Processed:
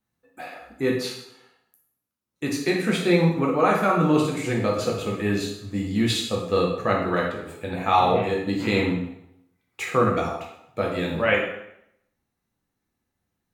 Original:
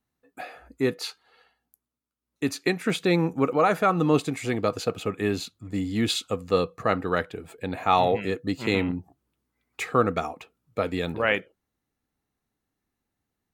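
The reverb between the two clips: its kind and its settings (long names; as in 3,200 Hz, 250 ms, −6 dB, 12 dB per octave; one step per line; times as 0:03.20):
dense smooth reverb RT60 0.77 s, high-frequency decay 0.85×, DRR −2.5 dB
level −2 dB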